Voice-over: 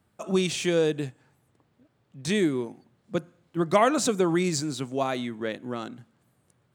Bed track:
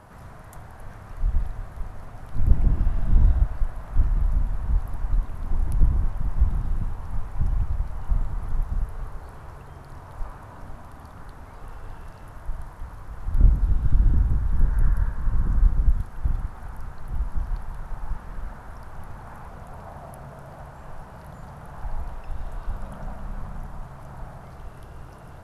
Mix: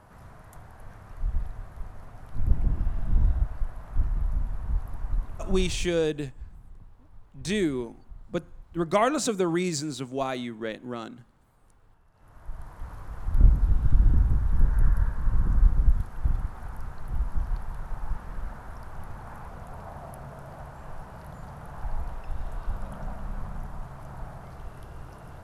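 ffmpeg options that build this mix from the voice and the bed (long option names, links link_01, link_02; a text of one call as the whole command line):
ffmpeg -i stem1.wav -i stem2.wav -filter_complex "[0:a]adelay=5200,volume=-2dB[link_01];[1:a]volume=16dB,afade=type=out:start_time=5.62:duration=0.25:silence=0.141254,afade=type=in:start_time=12.12:duration=0.82:silence=0.0891251[link_02];[link_01][link_02]amix=inputs=2:normalize=0" out.wav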